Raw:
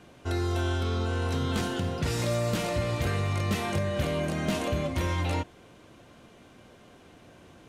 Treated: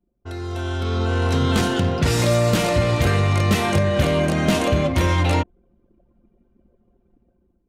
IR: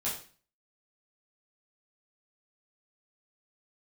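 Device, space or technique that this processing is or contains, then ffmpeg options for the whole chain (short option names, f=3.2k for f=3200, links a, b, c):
voice memo with heavy noise removal: -af "anlmdn=0.398,dynaudnorm=f=360:g=5:m=13.5dB,volume=-3dB"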